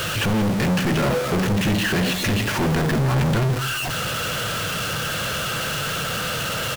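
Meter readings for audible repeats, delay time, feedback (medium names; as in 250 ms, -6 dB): 1, 167 ms, no regular repeats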